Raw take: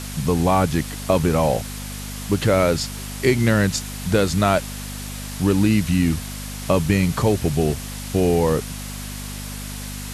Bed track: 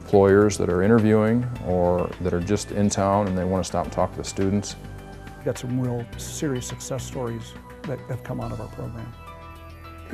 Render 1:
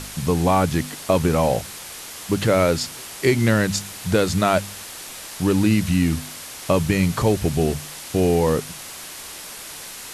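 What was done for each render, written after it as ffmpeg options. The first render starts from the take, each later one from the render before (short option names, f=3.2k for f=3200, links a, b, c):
-af "bandreject=f=50:t=h:w=4,bandreject=f=100:t=h:w=4,bandreject=f=150:t=h:w=4,bandreject=f=200:t=h:w=4,bandreject=f=250:t=h:w=4"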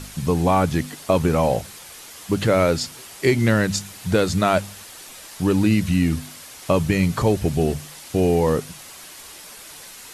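-af "afftdn=nr=6:nf=-37"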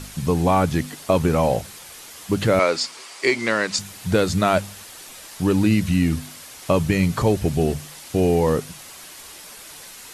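-filter_complex "[0:a]asettb=1/sr,asplit=3[a][b][c];[a]atrim=end=2.594[d];[b]atrim=start=2.59:end=3.79,asetpts=PTS-STARTPTS,afade=t=in:d=0.004:c=qsin,afade=t=out:st=1.196:d=0.004:c=qsin,highpass=360,equalizer=f=1.1k:t=q:w=4:g=6,equalizer=f=2.2k:t=q:w=4:g=5,equalizer=f=4.7k:t=q:w=4:g=5,lowpass=f=9.4k:w=0.5412,lowpass=f=9.4k:w=1.3066[e];[c]atrim=start=3.786[f];[d][e]acrossfade=d=0.004:c1=hsin:c2=qsin[g];[g][f]acrossfade=d=0.004:c1=qsin:c2=hsin"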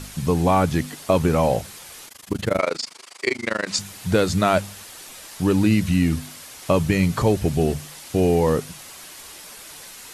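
-filter_complex "[0:a]asplit=3[a][b][c];[a]afade=t=out:st=2.06:d=0.02[d];[b]tremolo=f=25:d=0.974,afade=t=in:st=2.06:d=0.02,afade=t=out:st=3.66:d=0.02[e];[c]afade=t=in:st=3.66:d=0.02[f];[d][e][f]amix=inputs=3:normalize=0"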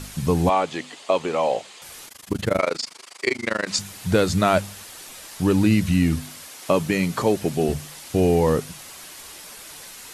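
-filter_complex "[0:a]asettb=1/sr,asplit=3[a][b][c];[a]atrim=end=0.494[d];[b]atrim=start=0.49:end=1.82,asetpts=PTS-STARTPTS,afade=t=in:d=0.004:c=qsin,afade=t=out:st=1.326:d=0.004:c=qsin,highpass=430,equalizer=f=1.5k:t=q:w=4:g=-6,equalizer=f=3k:t=q:w=4:g=3,equalizer=f=5.6k:t=q:w=4:g=-7,lowpass=f=7.4k:w=0.5412,lowpass=f=7.4k:w=1.3066[e];[c]atrim=start=1.816[f];[d][e]acrossfade=d=0.004:c1=hsin:c2=qsin[g];[g][f]acrossfade=d=0.004:c1=qsin:c2=hsin,asettb=1/sr,asplit=3[h][i][j];[h]atrim=end=6.484[k];[i]atrim=start=6.48:end=7.69,asetpts=PTS-STARTPTS,afade=t=in:d=0.004:c=qsin,afade=t=out:st=1.206:d=0.004:c=qsin,highpass=190[l];[j]atrim=start=7.686[m];[k][l]acrossfade=d=0.004:c1=hsin:c2=qsin[n];[n][m]acrossfade=d=0.004:c1=qsin:c2=hsin"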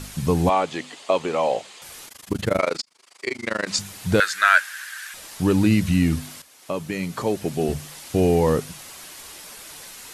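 -filter_complex "[0:a]asettb=1/sr,asplit=3[a][b][c];[a]atrim=end=4.204[d];[b]atrim=start=4.2:end=5.14,asetpts=PTS-STARTPTS,afade=t=in:d=0.004:c=qsin,afade=t=out:st=0.936:d=0.004:c=qsin,highpass=f=1.6k:t=q:w=11[e];[c]atrim=start=5.136[f];[d][e]acrossfade=d=0.004:c1=hsin:c2=qsin[g];[g][f]acrossfade=d=0.004:c1=qsin:c2=hsin,asplit=3[h][i][j];[h]atrim=end=2.82,asetpts=PTS-STARTPTS,afade=t=out:st=2.816:d=0.004:c=hsin[k];[i]atrim=start=2.82:end=6.42,asetpts=PTS-STARTPTS,afade=t=in:d=0.82,afade=t=out:st=3.596:d=0.004:c=hsin:silence=0.237137[l];[j]atrim=start=6.42,asetpts=PTS-STARTPTS,afade=t=in:d=1.54:silence=0.237137[m];[k][l][m]concat=n=3:v=0:a=1"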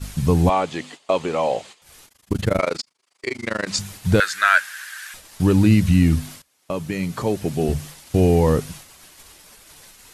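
-af "agate=range=-14dB:threshold=-39dB:ratio=16:detection=peak,lowshelf=f=120:g=11"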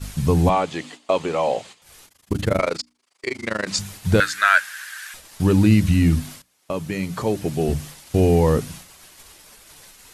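-af "bandreject=f=60:t=h:w=6,bandreject=f=120:t=h:w=6,bandreject=f=180:t=h:w=6,bandreject=f=240:t=h:w=6,bandreject=f=300:t=h:w=6"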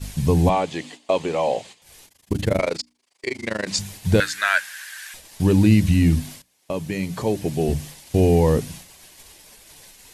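-af "equalizer=f=1.3k:w=3.3:g=-8"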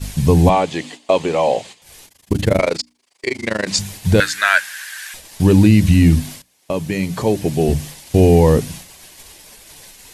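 -af "volume=5.5dB,alimiter=limit=-1dB:level=0:latency=1"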